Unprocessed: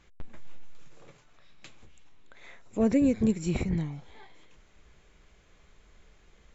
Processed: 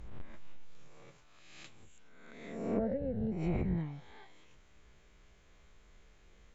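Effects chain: spectral swells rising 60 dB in 1.04 s; treble ducked by the level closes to 1200 Hz, closed at -21 dBFS; 2.79–3.32 fixed phaser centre 1600 Hz, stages 8; gain -6 dB

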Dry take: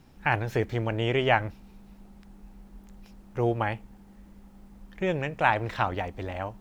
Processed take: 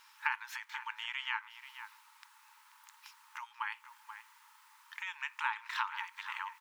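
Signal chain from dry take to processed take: compressor 6:1, threshold -35 dBFS, peak gain reduction 17.5 dB; brick-wall FIR high-pass 850 Hz; outdoor echo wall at 83 m, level -10 dB; gain +6 dB

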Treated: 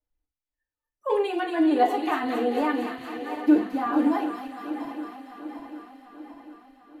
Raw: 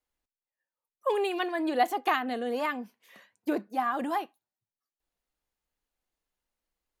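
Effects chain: regenerating reverse delay 0.373 s, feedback 73%, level -11.5 dB; in parallel at -1 dB: limiter -22.5 dBFS, peak gain reduction 9 dB; on the sum: high shelf 4400 Hz +8.5 dB; on a send: thin delay 0.23 s, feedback 73%, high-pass 2800 Hz, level -3 dB; on the sum: spectral noise reduction 9 dB; RIAA curve playback; FDN reverb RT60 0.33 s, low-frequency decay 1×, high-frequency decay 0.75×, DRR -1.5 dB; gain -7.5 dB

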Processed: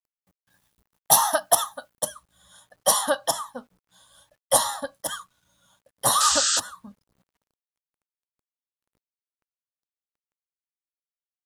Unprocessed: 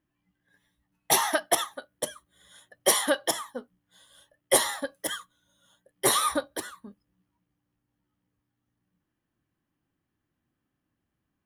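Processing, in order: 6.2–6.6 painted sound noise 1200–8400 Hz -24 dBFS; fixed phaser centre 920 Hz, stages 4; requantised 12-bit, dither none; high shelf 11000 Hz +3 dB, from 2.12 s -7 dB; gain +6 dB

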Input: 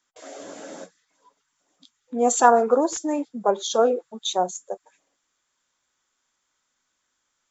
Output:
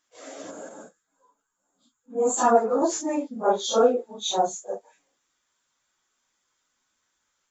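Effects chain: phase scrambler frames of 0.1 s; 0.5–2.37 spectral gain 1700–6400 Hz -11 dB; 0.69–2.82 ensemble effect

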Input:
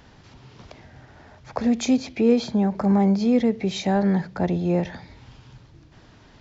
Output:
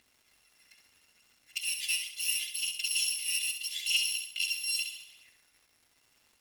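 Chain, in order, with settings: FFT order left unsorted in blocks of 256 samples; elliptic band-stop 330–1900 Hz; high shelf 2100 Hz +9 dB; upward compressor, threshold -38 dBFS; auto-wah 720–3000 Hz, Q 4, up, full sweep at -27.5 dBFS; phaser 0.76 Hz, delay 2.1 ms, feedback 41%; crackle 370/s -54 dBFS; flutter echo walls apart 11.4 m, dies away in 0.54 s

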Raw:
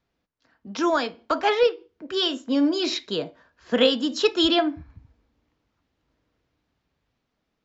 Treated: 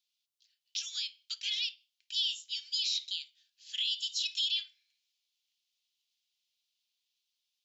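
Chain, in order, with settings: steep high-pass 3000 Hz 36 dB/oct; limiter -26.5 dBFS, peak gain reduction 12 dB; gain +3.5 dB

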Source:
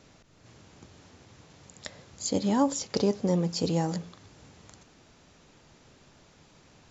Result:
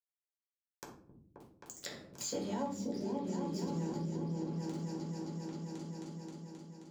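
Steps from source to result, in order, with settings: spectral gain 2.85–3.8, 430–4700 Hz -10 dB; crossover distortion -41 dBFS; reverb RT60 0.40 s, pre-delay 6 ms, DRR -6 dB; rotary speaker horn 0.75 Hz; upward compressor, threshold -31 dBFS; HPF 140 Hz 6 dB/oct; repeats that get brighter 0.265 s, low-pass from 200 Hz, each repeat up 2 oct, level 0 dB; compressor 3:1, threshold -37 dBFS, peak gain reduction 18.5 dB; gain -3 dB

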